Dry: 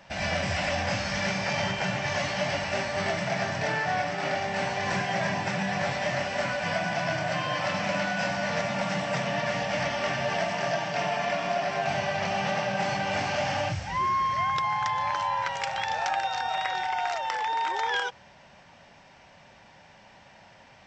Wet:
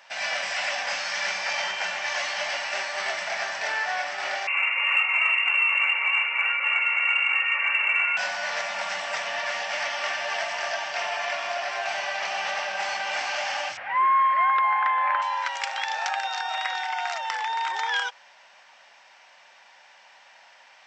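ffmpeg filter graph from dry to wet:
-filter_complex "[0:a]asettb=1/sr,asplit=3[a][b][c];[a]atrim=end=4.474[d];[b]atrim=start=4.47:end=8.17,asetpts=PTS-STARTPTS,afade=t=in:d=0.004:c=qsin,afade=t=out:st=3.696:d=0.004:c=qsin,aemphasis=mode=reproduction:type=bsi,lowpass=f=2.5k:t=q:w=0.5098,lowpass=f=2.5k:t=q:w=0.6013,lowpass=f=2.5k:t=q:w=0.9,lowpass=f=2.5k:t=q:w=2.563,afreqshift=-2900[e];[c]atrim=start=8.166[f];[d][e]acrossfade=d=0.004:c1=hsin:c2=qsin[g];[g][f]acrossfade=d=0.004:c1=qsin:c2=hsin,asettb=1/sr,asplit=3[h][i][j];[h]atrim=end=13.774[k];[i]atrim=start=13.77:end=15.22,asetpts=PTS-STARTPTS,afade=t=in:d=0.004:c=qsin,afade=t=out:st=1.446:d=0.004:c=qsin,lowpass=f=2.3k:w=0.5412,lowpass=f=2.3k:w=1.3066,bandreject=f=880:w=12,acontrast=31[l];[j]atrim=start=15.216[m];[k][l]acrossfade=d=0.004:c1=hsin:c2=qsin[n];[n][m]acrossfade=d=0.004:c1=qsin:c2=hsin,highpass=940,acontrast=73,volume=-3.5dB"

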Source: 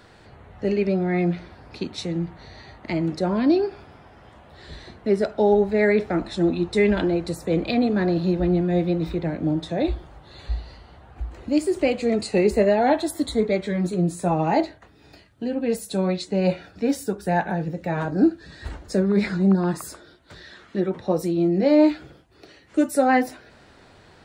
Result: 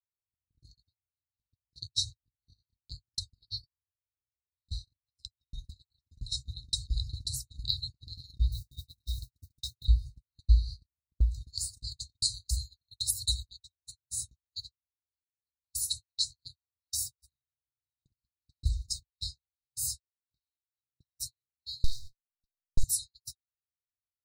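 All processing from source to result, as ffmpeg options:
-filter_complex "[0:a]asettb=1/sr,asplit=3[a][b][c];[a]atrim=end=8.524[d];[b]atrim=start=8.52:end=9.85,asetpts=PTS-STARTPTS,afade=t=in:d=0.004:c=qsin,afade=t=out:st=1.326:d=0.004:c=qsin,bandreject=f=50:t=h:w=6,bandreject=f=100:t=h:w=6,bandreject=f=150:t=h:w=6,bandreject=f=200:t=h:w=6,bandreject=f=250:t=h:w=6,bandreject=f=300:t=h:w=6,bandreject=f=350:t=h:w=6,acrusher=bits=7:mix=0:aa=0.5[e];[c]atrim=start=9.846[f];[d][e]acrossfade=d=0.004:c1=hsin:c2=qsin[g];[g][f]acrossfade=d=0.004:c1=qsin:c2=hsin,asettb=1/sr,asplit=3[h][i][j];[h]atrim=end=21.844[k];[i]atrim=start=21.84:end=22.84,asetpts=PTS-STARTPTS,afade=t=in:d=0.004:c=qsin,afade=t=out:st=0.996:d=0.004:c=qsin,aeval=exprs='abs(val(0))':c=same,acompressor=threshold=-20dB:ratio=2.5:attack=3.2:release=140:knee=1:detection=peak[l];[j]atrim=start=22.836[m];[k][l]acrossfade=d=0.004:c1=hsin:c2=qsin[n];[n][m]acrossfade=d=0.004:c1=qsin:c2=hsin,afftfilt=real='re*(1-between(b*sr/4096,130,3700))':imag='im*(1-between(b*sr/4096,130,3700))':win_size=4096:overlap=0.75,agate=range=-57dB:threshold=-41dB:ratio=16:detection=peak,volume=5.5dB"

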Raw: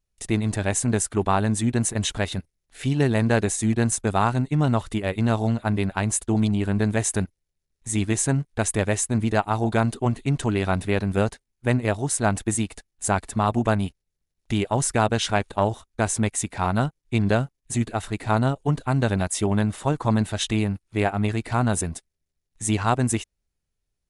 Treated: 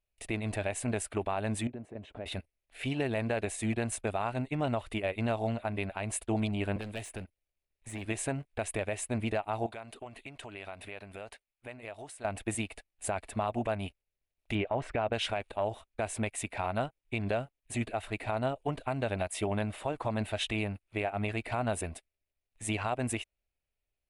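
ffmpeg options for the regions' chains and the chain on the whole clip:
-filter_complex "[0:a]asettb=1/sr,asplit=3[a][b][c];[a]atrim=end=1.674[d];[b]atrim=start=1.67:end=2.26,asetpts=PTS-STARTPTS,afade=t=in:d=0.004:c=qsin,afade=t=out:st=0.586:d=0.004:c=qsin,acompressor=threshold=-27dB:ratio=5:attack=3.2:release=140:knee=1:detection=peak,bandpass=f=280:t=q:w=0.62[e];[c]atrim=start=2.256[f];[d][e]acrossfade=d=0.004:c1=hsin:c2=qsin[g];[g][f]acrossfade=d=0.004:c1=qsin:c2=hsin,asettb=1/sr,asplit=3[h][i][j];[h]atrim=end=6.764[k];[i]atrim=start=6.76:end=8.06,asetpts=PTS-STARTPTS,afade=t=in:d=0.004:c=qsin,afade=t=out:st=1.296:d=0.004:c=qsin,asoftclip=type=hard:threshold=-20.5dB,acrossover=split=310|3100[l][m][n];[l]acompressor=threshold=-31dB:ratio=4[o];[m]acompressor=threshold=-38dB:ratio=4[p];[n]acompressor=threshold=-36dB:ratio=4[q];[o][p][q]amix=inputs=3:normalize=0[r];[j]atrim=start=8.056[s];[k][r]acrossfade=d=0.004:c1=hsin:c2=qsin[t];[t][s]acrossfade=d=0.004:c1=qsin:c2=hsin,asettb=1/sr,asplit=3[u][v][w];[u]atrim=end=9.664[x];[v]atrim=start=9.66:end=12.25,asetpts=PTS-STARTPTS,afade=t=in:d=0.004:c=qsin,afade=t=out:st=2.586:d=0.004:c=qsin,lowshelf=f=430:g=-9.5,acompressor=threshold=-34dB:ratio=12:attack=3.2:release=140:knee=1:detection=peak[y];[w]atrim=start=12.246[z];[x][y]acrossfade=d=0.004:c1=hsin:c2=qsin[aa];[aa][z]acrossfade=d=0.004:c1=qsin:c2=hsin,asettb=1/sr,asplit=3[ab][ac][ad];[ab]atrim=end=14.554[ae];[ac]atrim=start=14.55:end=15.13,asetpts=PTS-STARTPTS,afade=t=in:d=0.004:c=qsin,afade=t=out:st=0.576:d=0.004:c=qsin,lowpass=2.3k,acontrast=29[af];[ad]atrim=start=15.126[ag];[ae][af]acrossfade=d=0.004:c1=hsin:c2=qsin[ah];[ah][ag]acrossfade=d=0.004:c1=qsin:c2=hsin,equalizer=f=160:t=o:w=0.67:g=-7,equalizer=f=630:t=o:w=0.67:g=9,equalizer=f=2.5k:t=o:w=0.67:g=10,equalizer=f=6.3k:t=o:w=0.67:g=-8,alimiter=limit=-13dB:level=0:latency=1:release=151,volume=-8dB"

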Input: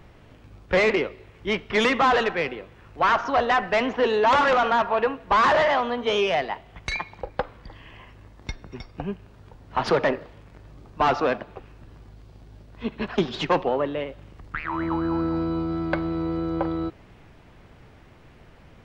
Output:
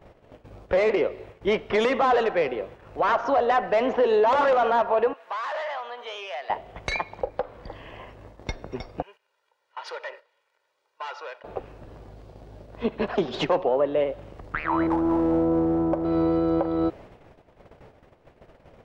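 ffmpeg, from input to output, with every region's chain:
-filter_complex "[0:a]asettb=1/sr,asplit=3[a][b][c];[a]atrim=end=5.134[d];[b]atrim=start=5.13:end=6.5,asetpts=PTS-STARTPTS,afade=t=in:d=0.004:c=qsin,afade=t=out:st=1.366:d=0.004:c=qsin,highpass=1.1k,acompressor=threshold=-44dB:ratio=2:attack=3.2:release=140:knee=1:detection=peak[e];[c]atrim=start=6.496[f];[d][e]acrossfade=d=0.004:c1=hsin:c2=qsin[g];[g][f]acrossfade=d=0.004:c1=qsin:c2=hsin,asettb=1/sr,asplit=3[h][i][j];[h]atrim=end=9.024[k];[i]atrim=start=9.02:end=11.44,asetpts=PTS-STARTPTS,afade=t=in:d=0.004:c=qsin,afade=t=out:st=2.416:d=0.004:c=qsin,highpass=1.5k,acompressor=threshold=-59dB:ratio=1.5:attack=3.2:release=140:knee=1:detection=peak,aecho=1:1:2.1:0.63,atrim=end_sample=106722[l];[j]atrim=start=11.436[m];[k][l]acrossfade=d=0.004:c1=hsin:c2=qsin[n];[n][m]acrossfade=d=0.004:c1=qsin:c2=hsin,asettb=1/sr,asplit=3[o][p][q];[o]atrim=end=14.874[r];[p]atrim=start=14.87:end=16.05,asetpts=PTS-STARTPTS,afade=t=in:d=0.004:c=qsin,afade=t=out:st=1.176:d=0.004:c=qsin,lowpass=f=1.1k:w=0.5412,lowpass=f=1.1k:w=1.3066,aeval=exprs='clip(val(0),-1,0.0596)':c=same[s];[q]atrim=start=16.046[t];[r][s]acrossfade=d=0.004:c1=hsin:c2=qsin[u];[u][t]acrossfade=d=0.004:c1=qsin:c2=hsin,agate=range=-14dB:threshold=-48dB:ratio=16:detection=peak,equalizer=f=570:w=0.97:g=11.5,alimiter=limit=-13.5dB:level=0:latency=1:release=243"

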